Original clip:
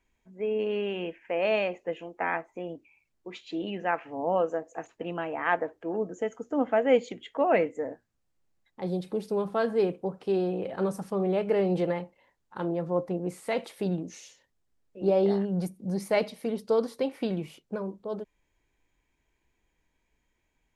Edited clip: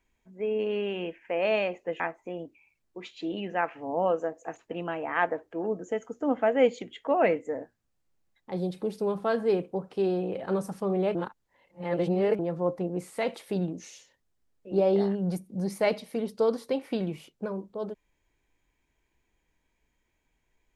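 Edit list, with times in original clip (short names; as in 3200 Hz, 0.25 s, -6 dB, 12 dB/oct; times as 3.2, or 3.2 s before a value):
2–2.3 cut
11.45–12.69 reverse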